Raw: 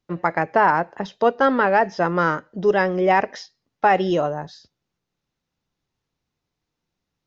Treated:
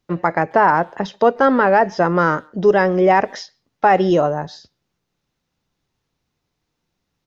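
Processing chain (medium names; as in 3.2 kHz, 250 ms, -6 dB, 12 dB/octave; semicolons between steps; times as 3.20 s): dynamic bell 3.1 kHz, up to -5 dB, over -36 dBFS, Q 0.95; in parallel at -1 dB: peak limiter -12 dBFS, peak gain reduction 7 dB; on the sum: speakerphone echo 140 ms, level -29 dB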